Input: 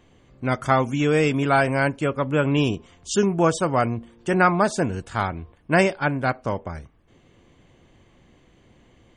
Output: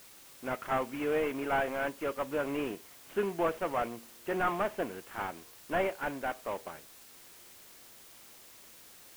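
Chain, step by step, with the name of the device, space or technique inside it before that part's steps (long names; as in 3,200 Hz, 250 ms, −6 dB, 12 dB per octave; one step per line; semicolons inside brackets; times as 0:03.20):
army field radio (band-pass filter 350–3,100 Hz; variable-slope delta modulation 16 kbit/s; white noise bed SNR 19 dB)
level −7 dB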